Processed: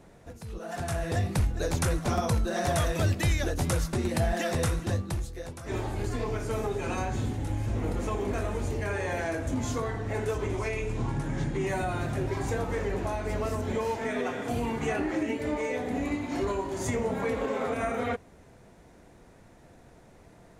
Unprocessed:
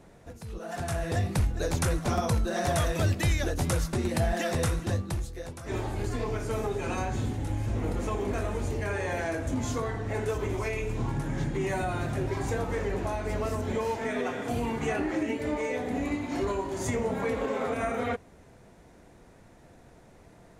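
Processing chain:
0:10.35–0:11.67: low-pass filter 11,000 Hz 24 dB per octave

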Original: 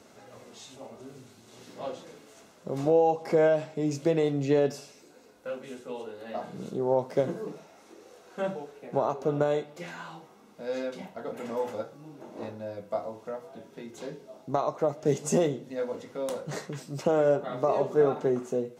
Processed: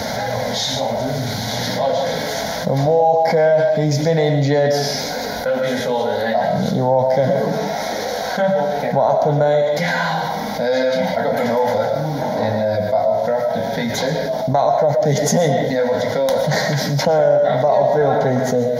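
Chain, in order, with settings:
phaser with its sweep stopped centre 1,800 Hz, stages 8
on a send at −7 dB: convolution reverb RT60 0.40 s, pre-delay 80 ms
on the sum: envelope flattener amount 70%
level +8 dB

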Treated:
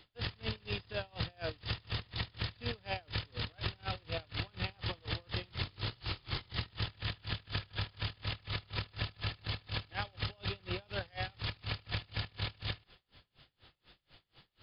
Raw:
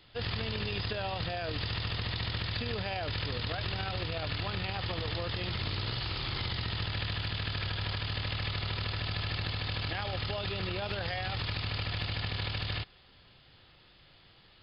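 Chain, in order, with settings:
tremolo with a sine in dB 4.1 Hz, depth 31 dB
level +1 dB

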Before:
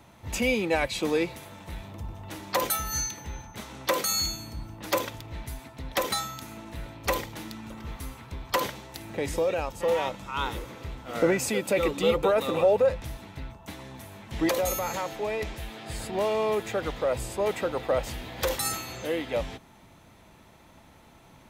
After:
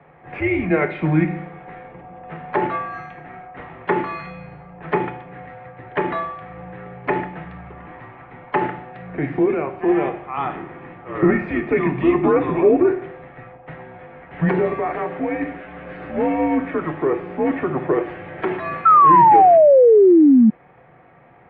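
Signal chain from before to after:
feedback delay network reverb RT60 0.61 s, low-frequency decay 1.3×, high-frequency decay 1×, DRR 5 dB
sound drawn into the spectrogram fall, 0:18.85–0:20.50, 360–1,500 Hz −16 dBFS
single-sideband voice off tune −150 Hz 290–2,400 Hz
level +6 dB

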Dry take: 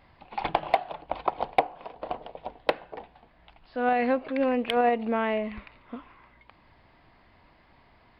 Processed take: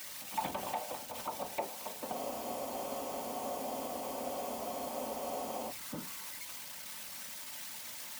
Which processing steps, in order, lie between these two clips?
spike at every zero crossing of −26 dBFS
brickwall limiter −20.5 dBFS, peak gain reduction 9.5 dB
random phases in short frames
high-pass filter 230 Hz 6 dB per octave
on a send at −4 dB: convolution reverb RT60 0.20 s, pre-delay 3 ms
on the sum: frozen spectrum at 0:02.17, 3.54 s
level −6.5 dB

